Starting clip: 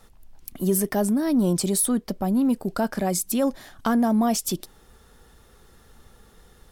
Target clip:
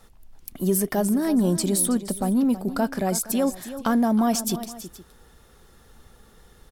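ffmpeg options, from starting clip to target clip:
ffmpeg -i in.wav -af "aecho=1:1:324|469:0.224|0.106" out.wav

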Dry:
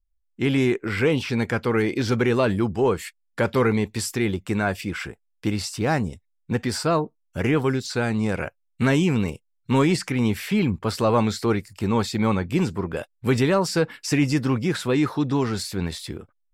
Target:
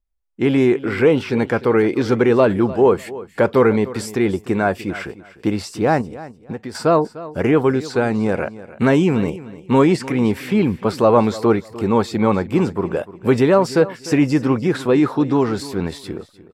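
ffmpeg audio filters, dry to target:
ffmpeg -i in.wav -filter_complex "[0:a]equalizer=frequency=530:width=0.33:gain=11.5,asettb=1/sr,asplit=3[link_01][link_02][link_03];[link_01]atrim=end=6.014[link_04];[link_02]atrim=start=6.01:end=6.75,asetpts=PTS-STARTPTS,afade=type=in:duration=0.004:curve=qsin,afade=type=out:start_time=0.736:duration=0.004:curve=qsin,acompressor=threshold=-23dB:ratio=6[link_05];[link_03]atrim=start=6.746[link_06];[link_04][link_05]acrossfade=duration=0.004:curve1=hsin:curve2=qsin[link_07];[link_07][link_06]acrossfade=duration=0.004:curve1=qsin:curve2=hsin,asplit=2[link_08][link_09];[link_09]aecho=0:1:300|600:0.141|0.0325[link_10];[link_08][link_10]amix=inputs=2:normalize=0,volume=-3.5dB" out.wav

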